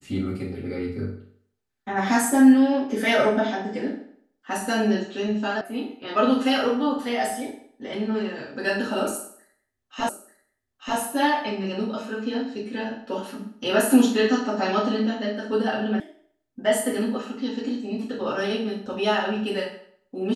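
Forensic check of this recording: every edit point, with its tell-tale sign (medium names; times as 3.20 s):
5.61 s: sound stops dead
10.09 s: repeat of the last 0.89 s
16.00 s: sound stops dead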